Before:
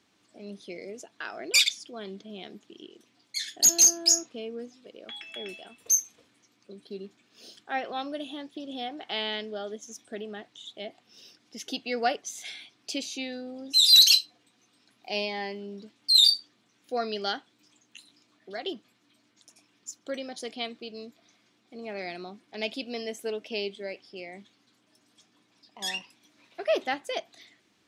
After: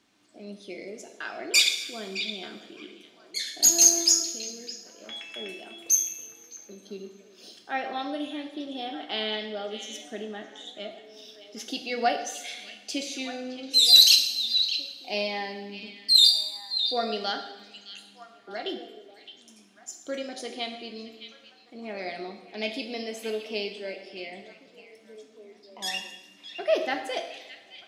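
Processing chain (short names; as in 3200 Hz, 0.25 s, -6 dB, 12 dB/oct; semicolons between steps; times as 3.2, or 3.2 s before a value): 4.2–5.02 level quantiser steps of 11 dB; delay with a stepping band-pass 0.614 s, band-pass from 3100 Hz, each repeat -1.4 oct, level -9 dB; two-slope reverb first 0.84 s, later 2.7 s, DRR 4 dB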